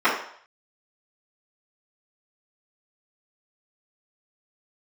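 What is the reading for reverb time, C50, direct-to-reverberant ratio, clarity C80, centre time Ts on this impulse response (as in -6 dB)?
0.60 s, 5.0 dB, -15.0 dB, 8.5 dB, 34 ms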